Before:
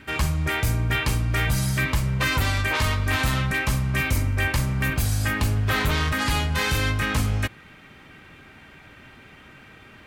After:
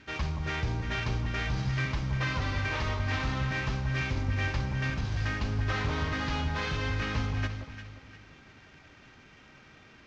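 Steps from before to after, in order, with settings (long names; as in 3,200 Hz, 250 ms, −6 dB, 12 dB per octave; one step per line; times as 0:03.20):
variable-slope delta modulation 32 kbit/s
delay that swaps between a low-pass and a high-pass 175 ms, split 1,100 Hz, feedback 58%, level −5 dB
level −8 dB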